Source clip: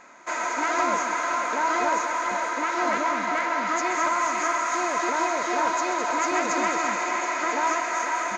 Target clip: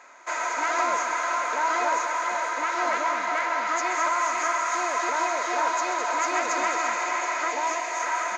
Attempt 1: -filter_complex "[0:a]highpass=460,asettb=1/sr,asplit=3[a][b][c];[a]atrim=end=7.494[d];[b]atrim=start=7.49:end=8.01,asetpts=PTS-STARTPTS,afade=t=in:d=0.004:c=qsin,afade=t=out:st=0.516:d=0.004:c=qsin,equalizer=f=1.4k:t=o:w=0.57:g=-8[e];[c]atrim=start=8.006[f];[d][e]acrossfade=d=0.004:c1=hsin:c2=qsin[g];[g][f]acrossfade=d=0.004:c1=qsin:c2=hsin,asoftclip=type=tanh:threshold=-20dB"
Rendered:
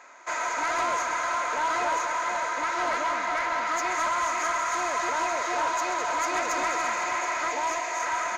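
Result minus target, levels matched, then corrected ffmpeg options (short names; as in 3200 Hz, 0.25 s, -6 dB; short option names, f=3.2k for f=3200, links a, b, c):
soft clip: distortion +20 dB
-filter_complex "[0:a]highpass=460,asettb=1/sr,asplit=3[a][b][c];[a]atrim=end=7.494[d];[b]atrim=start=7.49:end=8.01,asetpts=PTS-STARTPTS,afade=t=in:d=0.004:c=qsin,afade=t=out:st=0.516:d=0.004:c=qsin,equalizer=f=1.4k:t=o:w=0.57:g=-8[e];[c]atrim=start=8.006[f];[d][e]acrossfade=d=0.004:c1=hsin:c2=qsin[g];[g][f]acrossfade=d=0.004:c1=qsin:c2=hsin,asoftclip=type=tanh:threshold=-8dB"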